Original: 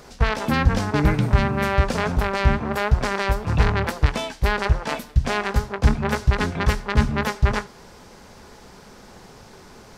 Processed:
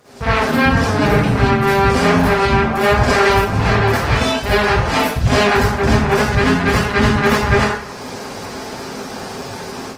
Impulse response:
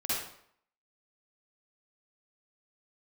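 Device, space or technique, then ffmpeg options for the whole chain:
far-field microphone of a smart speaker: -filter_complex "[1:a]atrim=start_sample=2205[a];[0:a][a]afir=irnorm=-1:irlink=0,highpass=100,dynaudnorm=f=150:g=3:m=12.5dB,volume=-1dB" -ar 48000 -c:a libopus -b:a 20k

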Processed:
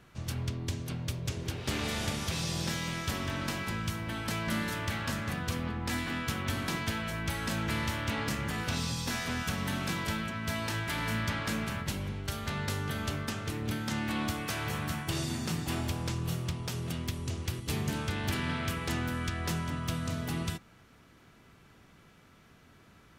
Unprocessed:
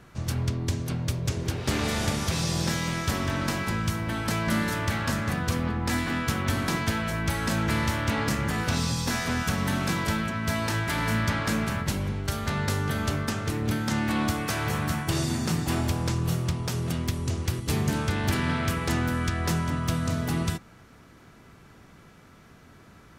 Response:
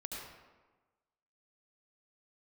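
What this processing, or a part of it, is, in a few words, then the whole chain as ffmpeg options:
presence and air boost: -af "equalizer=f=3k:t=o:w=1:g=4.5,highshelf=f=12k:g=4,volume=-7dB"

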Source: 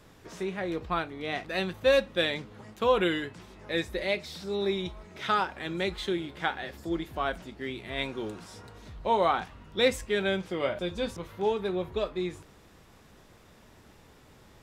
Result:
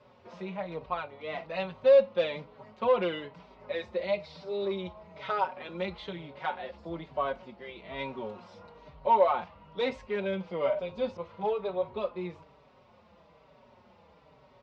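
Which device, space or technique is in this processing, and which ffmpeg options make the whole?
barber-pole flanger into a guitar amplifier: -filter_complex "[0:a]asplit=2[a][b];[b]adelay=4.9,afreqshift=-1.1[c];[a][c]amix=inputs=2:normalize=1,asoftclip=type=tanh:threshold=-20.5dB,highpass=84,equalizer=f=110:t=q:w=4:g=-7,equalizer=f=320:t=q:w=4:g=-9,equalizer=f=570:t=q:w=4:g=9,equalizer=f=960:t=q:w=4:g=7,equalizer=f=1.7k:t=q:w=4:g=-8,equalizer=f=3.5k:t=q:w=4:g=-5,lowpass=f=4.2k:w=0.5412,lowpass=f=4.2k:w=1.3066"

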